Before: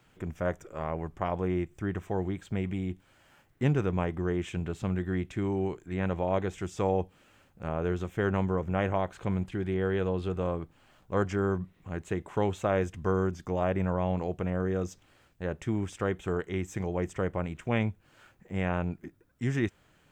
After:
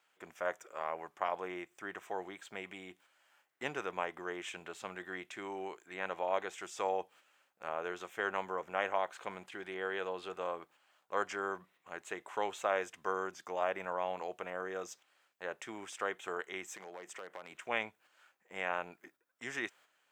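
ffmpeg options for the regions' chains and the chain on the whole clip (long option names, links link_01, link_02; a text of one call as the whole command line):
ffmpeg -i in.wav -filter_complex "[0:a]asettb=1/sr,asplit=3[link_01][link_02][link_03];[link_01]atrim=end=16.744[link_04];[link_02]atrim=start=16.74:end=17.53,asetpts=PTS-STARTPTS,afade=type=in:duration=0.004:curve=qsin,afade=type=out:start_time=0.786:duration=0.004:curve=qsin,highpass=frequency=140:width=0.5412,highpass=frequency=140:width=1.3066,acompressor=threshold=-33dB:ratio=12:attack=3.2:release=140:knee=1:detection=peak,volume=31dB,asoftclip=hard,volume=-31dB[link_05];[link_03]atrim=start=17.526[link_06];[link_04][link_05]acrossfade=duration=0.004:curve1=hsin:curve2=qsin[link_07];[link_07][link_06]acrossfade=duration=0.004:curve1=qsin:curve2=hsin,agate=range=-7dB:threshold=-50dB:ratio=16:detection=peak,highpass=730" out.wav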